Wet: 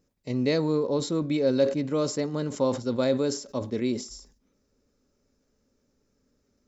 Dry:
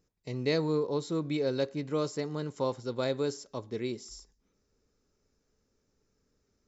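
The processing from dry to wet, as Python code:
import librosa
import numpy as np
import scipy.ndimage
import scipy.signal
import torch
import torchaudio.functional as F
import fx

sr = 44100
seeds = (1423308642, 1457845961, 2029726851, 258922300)

p1 = fx.level_steps(x, sr, step_db=12)
p2 = x + (p1 * librosa.db_to_amplitude(-3.0))
p3 = fx.small_body(p2, sr, hz=(250.0, 560.0), ring_ms=45, db=8)
y = fx.sustainer(p3, sr, db_per_s=120.0)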